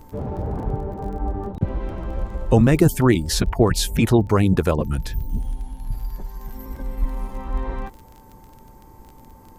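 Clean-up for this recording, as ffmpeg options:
-af "adeclick=t=4,bandreject=f=890:w=30"

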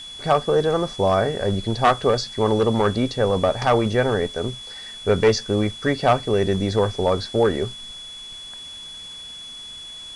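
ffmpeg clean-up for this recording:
-af "adeclick=t=4,bandreject=f=3.4k:w=30,afwtdn=0.0056"

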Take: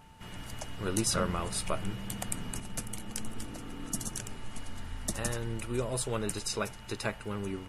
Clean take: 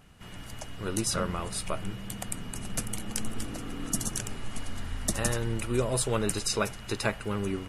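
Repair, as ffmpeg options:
-af "bandreject=f=890:w=30,asetnsamples=n=441:p=0,asendcmd='2.6 volume volume 5dB',volume=0dB"

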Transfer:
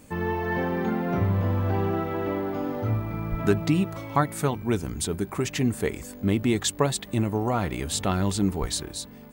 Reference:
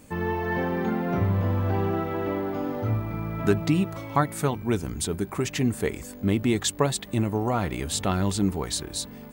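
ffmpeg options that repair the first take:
-filter_complex "[0:a]asplit=3[a][b][c];[a]afade=t=out:st=3.3:d=0.02[d];[b]highpass=f=140:w=0.5412,highpass=f=140:w=1.3066,afade=t=in:st=3.3:d=0.02,afade=t=out:st=3.42:d=0.02[e];[c]afade=t=in:st=3.42:d=0.02[f];[d][e][f]amix=inputs=3:normalize=0,asplit=3[g][h][i];[g]afade=t=out:st=8.6:d=0.02[j];[h]highpass=f=140:w=0.5412,highpass=f=140:w=1.3066,afade=t=in:st=8.6:d=0.02,afade=t=out:st=8.72:d=0.02[k];[i]afade=t=in:st=8.72:d=0.02[l];[j][k][l]amix=inputs=3:normalize=0,asetnsamples=n=441:p=0,asendcmd='8.92 volume volume 3.5dB',volume=0dB"

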